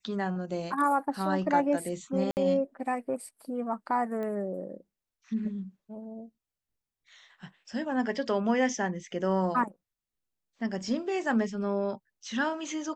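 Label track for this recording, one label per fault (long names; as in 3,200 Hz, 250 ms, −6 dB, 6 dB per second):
2.310000	2.370000	drop-out 59 ms
4.230000	4.230000	click −26 dBFS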